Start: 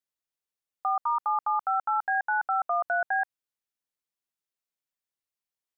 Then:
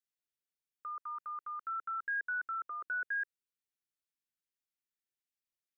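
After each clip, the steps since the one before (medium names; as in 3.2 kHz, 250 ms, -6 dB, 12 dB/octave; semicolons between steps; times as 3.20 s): Chebyshev band-stop 400–1500 Hz, order 2; trim -5 dB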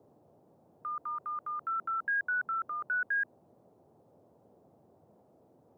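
band noise 93–720 Hz -68 dBFS; trim +4.5 dB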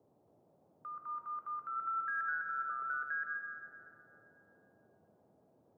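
reverberation RT60 2.4 s, pre-delay 55 ms, DRR 1.5 dB; trim -8 dB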